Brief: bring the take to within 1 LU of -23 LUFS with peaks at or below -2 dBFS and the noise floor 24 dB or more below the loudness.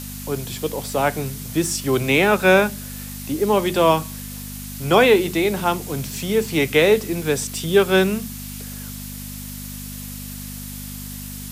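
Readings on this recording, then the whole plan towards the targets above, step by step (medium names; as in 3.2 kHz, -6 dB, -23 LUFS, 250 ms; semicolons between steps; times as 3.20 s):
hum 50 Hz; highest harmonic 250 Hz; hum level -32 dBFS; noise floor -33 dBFS; noise floor target -44 dBFS; loudness -19.5 LUFS; peak level -3.0 dBFS; loudness target -23.0 LUFS
-> de-hum 50 Hz, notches 5; noise reduction 11 dB, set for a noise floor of -33 dBFS; trim -3.5 dB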